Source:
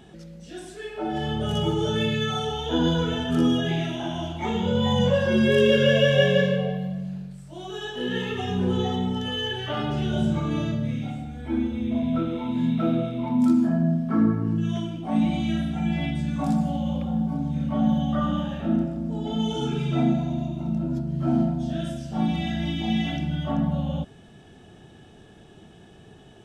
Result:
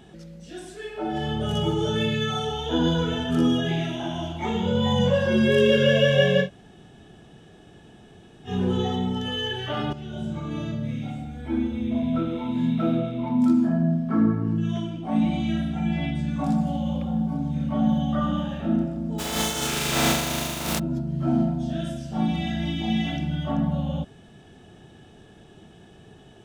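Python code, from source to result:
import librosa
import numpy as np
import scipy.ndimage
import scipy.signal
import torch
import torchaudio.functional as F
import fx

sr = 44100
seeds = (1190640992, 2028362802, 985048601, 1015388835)

y = fx.high_shelf(x, sr, hz=6100.0, db=-5.5, at=(12.99, 16.67))
y = fx.spec_flatten(y, sr, power=0.32, at=(19.18, 20.78), fade=0.02)
y = fx.edit(y, sr, fx.room_tone_fill(start_s=6.45, length_s=2.04, crossfade_s=0.1),
    fx.fade_in_from(start_s=9.93, length_s=1.31, floor_db=-12.5), tone=tone)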